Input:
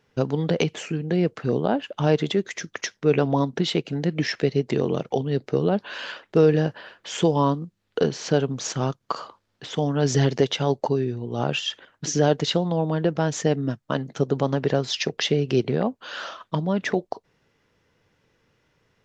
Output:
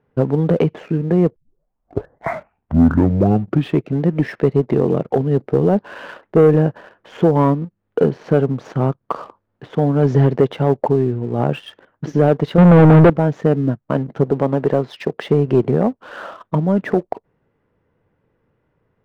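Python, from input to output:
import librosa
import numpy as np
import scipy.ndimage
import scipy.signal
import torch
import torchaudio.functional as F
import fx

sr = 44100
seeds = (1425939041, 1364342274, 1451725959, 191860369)

y = fx.leveller(x, sr, passes=5, at=(12.58, 13.1))
y = fx.highpass(y, sr, hz=170.0, slope=6, at=(14.31, 15.25))
y = fx.edit(y, sr, fx.tape_start(start_s=1.36, length_s=2.65), tone=tone)
y = scipy.signal.sosfilt(scipy.signal.bessel(2, 1000.0, 'lowpass', norm='mag', fs=sr, output='sos'), y)
y = fx.leveller(y, sr, passes=1)
y = y * librosa.db_to_amplitude(4.5)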